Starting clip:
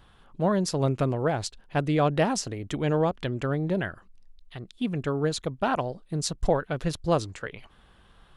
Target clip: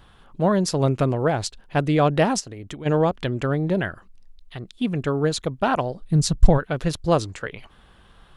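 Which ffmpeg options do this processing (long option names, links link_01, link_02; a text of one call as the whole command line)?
ffmpeg -i in.wav -filter_complex "[0:a]asplit=3[link_01][link_02][link_03];[link_01]afade=type=out:start_time=2.39:duration=0.02[link_04];[link_02]acompressor=threshold=-37dB:ratio=12,afade=type=in:start_time=2.39:duration=0.02,afade=type=out:start_time=2.85:duration=0.02[link_05];[link_03]afade=type=in:start_time=2.85:duration=0.02[link_06];[link_04][link_05][link_06]amix=inputs=3:normalize=0,asplit=3[link_07][link_08][link_09];[link_07]afade=type=out:start_time=6:duration=0.02[link_10];[link_08]asubboost=boost=3.5:cutoff=220,afade=type=in:start_time=6:duration=0.02,afade=type=out:start_time=6.57:duration=0.02[link_11];[link_09]afade=type=in:start_time=6.57:duration=0.02[link_12];[link_10][link_11][link_12]amix=inputs=3:normalize=0,volume=4.5dB" out.wav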